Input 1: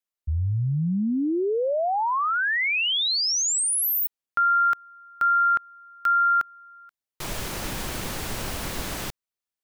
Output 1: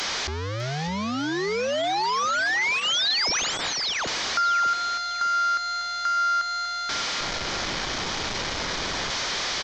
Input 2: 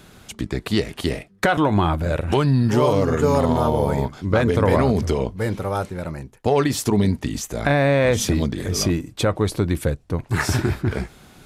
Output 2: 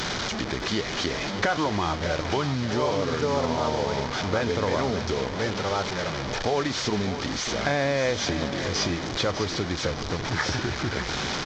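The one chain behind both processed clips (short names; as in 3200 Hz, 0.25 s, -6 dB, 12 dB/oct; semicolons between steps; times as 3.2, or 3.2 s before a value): delta modulation 32 kbps, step -21.5 dBFS; notch 2700 Hz, Q 12; compressor 2.5:1, threshold -22 dBFS; low shelf 300 Hz -8 dB; on a send: feedback echo 0.601 s, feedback 33%, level -11 dB; on the sum: gain +1 dB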